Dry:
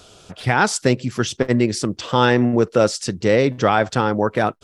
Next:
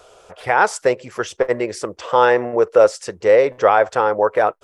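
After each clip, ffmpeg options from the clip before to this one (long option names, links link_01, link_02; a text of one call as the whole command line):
ffmpeg -i in.wav -af "equalizer=frequency=125:width_type=o:width=1:gain=-10,equalizer=frequency=250:width_type=o:width=1:gain=-11,equalizer=frequency=500:width_type=o:width=1:gain=11,equalizer=frequency=1000:width_type=o:width=1:gain=6,equalizer=frequency=2000:width_type=o:width=1:gain=4,equalizer=frequency=4000:width_type=o:width=1:gain=-6,volume=-4dB" out.wav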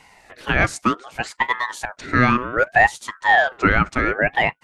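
ffmpeg -i in.wav -af "aeval=exprs='val(0)*sin(2*PI*1100*n/s+1100*0.35/0.65*sin(2*PI*0.65*n/s))':channel_layout=same" out.wav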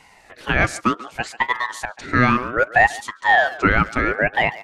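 ffmpeg -i in.wav -filter_complex "[0:a]asplit=2[link_01][link_02];[link_02]adelay=140,highpass=300,lowpass=3400,asoftclip=type=hard:threshold=-12dB,volume=-16dB[link_03];[link_01][link_03]amix=inputs=2:normalize=0" out.wav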